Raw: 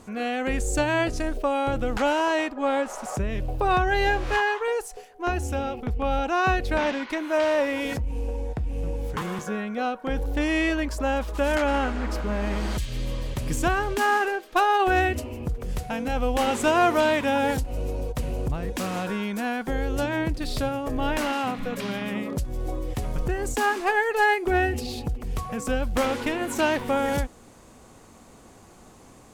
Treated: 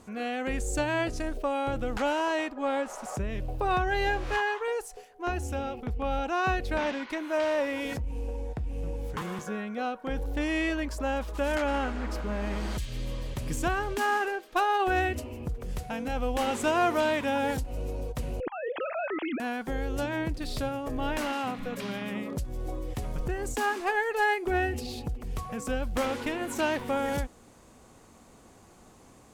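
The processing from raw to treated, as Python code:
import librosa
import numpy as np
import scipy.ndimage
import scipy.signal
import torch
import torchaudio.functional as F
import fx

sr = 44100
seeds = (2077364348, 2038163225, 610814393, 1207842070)

y = fx.sine_speech(x, sr, at=(18.4, 19.4))
y = fx.cheby_harmonics(y, sr, harmonics=(5,), levels_db=(-39,), full_scale_db=-12.5)
y = y * librosa.db_to_amplitude(-5.0)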